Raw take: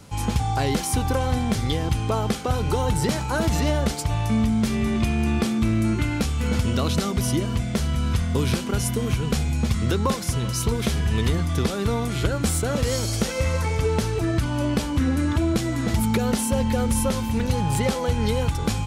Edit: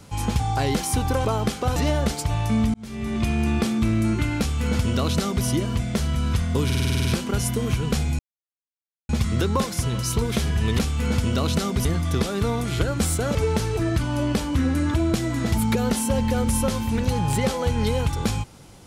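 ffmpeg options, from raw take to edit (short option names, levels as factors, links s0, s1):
-filter_complex "[0:a]asplit=16[s0][s1][s2][s3][s4][s5][s6][s7][s8][s9][s10][s11][s12][s13][s14][s15];[s0]atrim=end=1.252[s16];[s1]atrim=start=2.078:end=2.592[s17];[s2]atrim=start=3.558:end=4.54,asetpts=PTS-STARTPTS,afade=t=out:st=0.978:d=0.004:c=hsin[s18];[s3]atrim=start=4.54:end=8.502,asetpts=PTS-STARTPTS,afade=t=in:d=0.56[s19];[s4]atrim=start=8.448:end=8.502[s20];[s5]atrim=start=8.448:end=8.502[s21];[s6]atrim=start=8.448:end=8.502[s22];[s7]atrim=start=8.448:end=8.502[s23];[s8]atrim=start=8.448:end=8.502[s24];[s9]atrim=start=8.448:end=8.502[s25];[s10]atrim=start=8.448:end=8.502[s26];[s11]atrim=start=8.448:end=9.59,asetpts=PTS-STARTPTS,afade=t=out:st=1.138:d=0.004:c=hsin,apad=pad_dur=0.9[s27];[s12]atrim=start=9.59:end=11.292,asetpts=PTS-STARTPTS,afade=t=in:d=0.004:c=hsin[s28];[s13]atrim=start=6.198:end=7.262[s29];[s14]atrim=start=11.288:end=12.792[s30];[s15]atrim=start=13.768[s31];[s16][s17]acrossfade=d=0.004:c1=hsin:c2=hsin[s32];[s18][s19]concat=n=2:v=0:a=1[s33];[s32][s33]acrossfade=d=0.004:c1=hsin:c2=hsin[s34];[s34][s20]acrossfade=d=0.004:c1=hsin:c2=hsin[s35];[s35][s21]acrossfade=d=0.004:c1=hsin:c2=hsin[s36];[s36][s22]acrossfade=d=0.004:c1=hsin:c2=hsin[s37];[s37][s23]acrossfade=d=0.004:c1=hsin:c2=hsin[s38];[s38][s24]acrossfade=d=0.004:c1=hsin:c2=hsin[s39];[s39][s25]acrossfade=d=0.004:c1=hsin:c2=hsin[s40];[s40][s26]acrossfade=d=0.004:c1=hsin:c2=hsin[s41];[s27][s28]concat=n=2:v=0:a=1[s42];[s41][s42]acrossfade=d=0.004:c1=hsin:c2=hsin[s43];[s43][s29]acrossfade=d=0.004:c1=hsin:c2=hsin[s44];[s44][s30]acrossfade=d=0.004:c1=hsin:c2=hsin[s45];[s45][s31]acrossfade=d=0.004:c1=hsin:c2=hsin"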